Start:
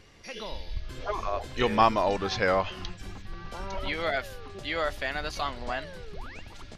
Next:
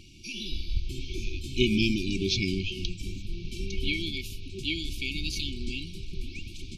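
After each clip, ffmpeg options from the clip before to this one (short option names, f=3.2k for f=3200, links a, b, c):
-af "afftfilt=real='re*(1-between(b*sr/4096,390,2200))':imag='im*(1-between(b*sr/4096,390,2200))':win_size=4096:overlap=0.75,volume=5.5dB"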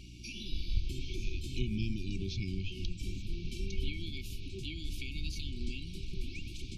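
-filter_complex "[0:a]acrossover=split=160[a][b];[b]acompressor=threshold=-40dB:ratio=5[c];[a][c]amix=inputs=2:normalize=0,aeval=exprs='val(0)+0.00447*(sin(2*PI*60*n/s)+sin(2*PI*2*60*n/s)/2+sin(2*PI*3*60*n/s)/3+sin(2*PI*4*60*n/s)/4+sin(2*PI*5*60*n/s)/5)':c=same,volume=-2.5dB"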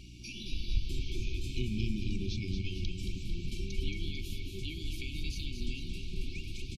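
-af "aecho=1:1:224|448|672|896|1120|1344|1568|1792:0.473|0.274|0.159|0.0923|0.0535|0.0311|0.018|0.0104"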